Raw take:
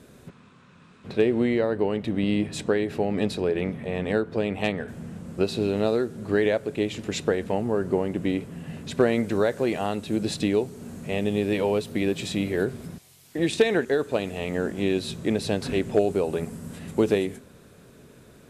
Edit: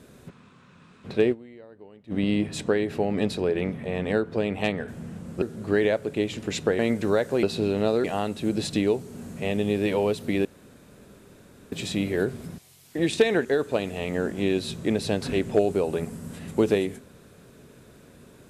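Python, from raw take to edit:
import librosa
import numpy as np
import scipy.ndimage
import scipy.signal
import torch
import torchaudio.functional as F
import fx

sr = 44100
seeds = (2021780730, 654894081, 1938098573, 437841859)

y = fx.edit(x, sr, fx.fade_down_up(start_s=1.32, length_s=0.8, db=-23.0, fade_s=0.15, curve='exp'),
    fx.move(start_s=5.42, length_s=0.61, to_s=9.71),
    fx.cut(start_s=7.4, length_s=1.67),
    fx.insert_room_tone(at_s=12.12, length_s=1.27), tone=tone)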